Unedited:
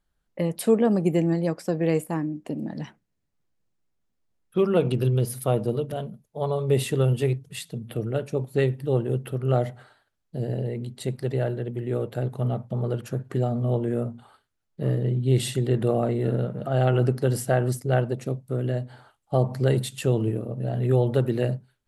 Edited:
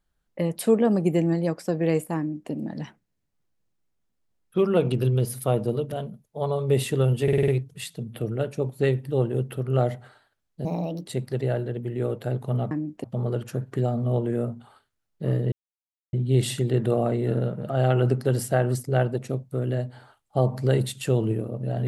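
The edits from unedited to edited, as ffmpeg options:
-filter_complex "[0:a]asplit=11[a][b][c][d][e][f][g][h][i][j][k];[a]atrim=end=7.282[l];[b]atrim=start=7.228:end=7.282[m];[c]atrim=start=7.228:end=7.282[n];[d]atrim=start=7.228:end=7.282[o];[e]atrim=start=7.228:end=7.282[p];[f]atrim=start=7.228:end=10.404[q];[g]atrim=start=10.4:end=10.98,asetpts=PTS-STARTPTS,asetrate=60858,aresample=44100[r];[h]atrim=start=10.976:end=12.622[s];[i]atrim=start=2.178:end=2.512[t];[j]atrim=start=12.618:end=15.1,asetpts=PTS-STARTPTS,afade=t=out:st=2.478:d=0.004:c=hsin,apad=pad_dur=0.61[u];[k]atrim=start=15.1,asetpts=PTS-STARTPTS,afade=t=in:d=0.004:c=hsin[v];[l][m]acrossfade=d=0.004:c1=hsin:c2=hsin[w];[w][n]acrossfade=d=0.004:c1=hsin:c2=hsin[x];[x][o]acrossfade=d=0.004:c1=hsin:c2=hsin[y];[y][p]acrossfade=d=0.004:c1=hsin:c2=hsin[z];[z][q]acrossfade=d=0.004:c1=hsin:c2=hsin[aa];[aa][r]acrossfade=d=0.004:c1=hsin:c2=hsin[ab];[ab][s]acrossfade=d=0.004:c1=hsin:c2=hsin[ac];[ac][t]acrossfade=d=0.004:c1=hsin:c2=hsin[ad];[u][v]concat=n=2:v=0:a=1[ae];[ad][ae]acrossfade=d=0.004:c1=hsin:c2=hsin"

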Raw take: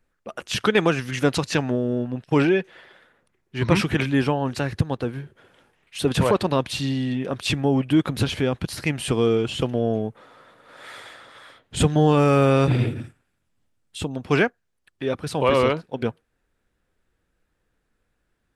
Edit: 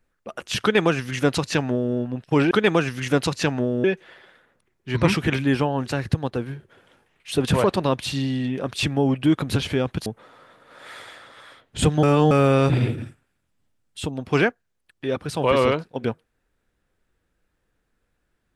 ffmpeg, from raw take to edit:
-filter_complex "[0:a]asplit=6[a][b][c][d][e][f];[a]atrim=end=2.512[g];[b]atrim=start=0.618:end=1.952[h];[c]atrim=start=2.508:end=8.732[i];[d]atrim=start=10.038:end=12.012[j];[e]atrim=start=12.008:end=12.292,asetpts=PTS-STARTPTS,areverse[k];[f]atrim=start=12.288[l];[g][h]acrossfade=d=0.004:c1=hsin:c2=hsin[m];[m][i]acrossfade=d=0.004:c1=hsin:c2=hsin[n];[n][j]acrossfade=d=0.004:c1=hsin:c2=hsin[o];[o][k]acrossfade=d=0.004:c1=hsin:c2=hsin[p];[p][l]acrossfade=d=0.004:c1=hsin:c2=hsin"

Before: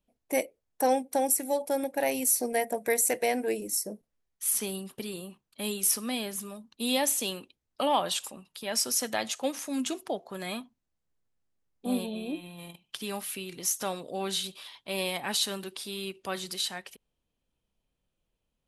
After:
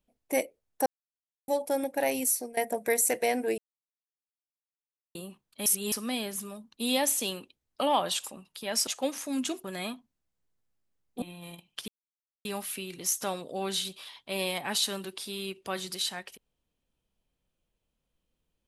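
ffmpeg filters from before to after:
-filter_complex "[0:a]asplit=12[a][b][c][d][e][f][g][h][i][j][k][l];[a]atrim=end=0.86,asetpts=PTS-STARTPTS,afade=t=out:st=0.856:d=0.004:c=hsin[m];[b]atrim=start=0.86:end=1.48,asetpts=PTS-STARTPTS,volume=0[n];[c]atrim=start=1.48:end=2.57,asetpts=PTS-STARTPTS,afade=t=in:d=0.004:c=hsin,afade=t=out:st=0.74:d=0.35:silence=0.11885[o];[d]atrim=start=2.57:end=3.58,asetpts=PTS-STARTPTS,afade=t=in:d=0.004:c=hsin:silence=0.11885,afade=t=out:st=1.006:d=0.004:c=hsin[p];[e]atrim=start=3.58:end=5.15,asetpts=PTS-STARTPTS,volume=0[q];[f]atrim=start=5.15:end=5.662,asetpts=PTS-STARTPTS,afade=t=in:d=0.004:c=hsin[r];[g]atrim=start=5.658:end=5.922,asetpts=PTS-STARTPTS,areverse[s];[h]atrim=start=5.918:end=8.872[t];[i]atrim=start=9.278:end=10.052[u];[j]atrim=start=10.308:end=11.892[v];[k]atrim=start=12.378:end=13.04,asetpts=PTS-STARTPTS,afade=t=out:st=0.658:d=0.004:c=hsin,apad=pad_dur=0.57[w];[l]atrim=start=13.04,asetpts=PTS-STARTPTS,afade=t=in:d=0.004:c=hsin[x];[m][n][o][p][q][r]concat=n=6:v=0:a=1[y];[y][s]acrossfade=d=0.004:c1=hsin:c2=hsin[z];[z][t]acrossfade=d=0.004:c1=hsin:c2=hsin[aa];[aa][u]acrossfade=d=0.004:c1=hsin:c2=hsin[ab];[ab][v]acrossfade=d=0.004:c1=hsin:c2=hsin[ac];[w][x]concat=n=2:v=0:a=1[ad];[ac][ad]acrossfade=d=0.004:c1=hsin:c2=hsin"

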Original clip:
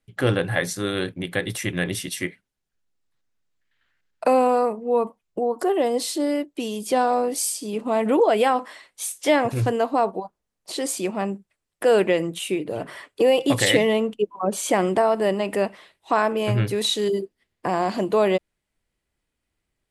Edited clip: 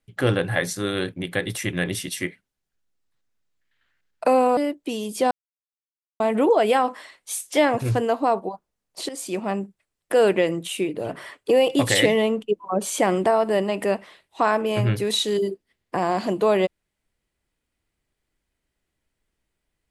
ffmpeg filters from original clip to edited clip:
-filter_complex "[0:a]asplit=5[a][b][c][d][e];[a]atrim=end=4.572[f];[b]atrim=start=6.278:end=7.02,asetpts=PTS-STARTPTS,afade=t=out:st=0.738:d=0.004:c=hsin[g];[c]atrim=start=7.02:end=7.91,asetpts=PTS-STARTPTS,volume=0[h];[d]atrim=start=7.91:end=10.8,asetpts=PTS-STARTPTS,afade=t=in:d=0.004:c=hsin,afade=t=out:st=2.886:d=0.004:c=hsin:silence=0.237137[i];[e]atrim=start=10.8,asetpts=PTS-STARTPTS,afade=t=in:d=0.32:silence=0.237137[j];[g][h][i][j]concat=n=4:v=0:a=1[k];[f][k]acrossfade=d=0.004:c1=hsin:c2=hsin"

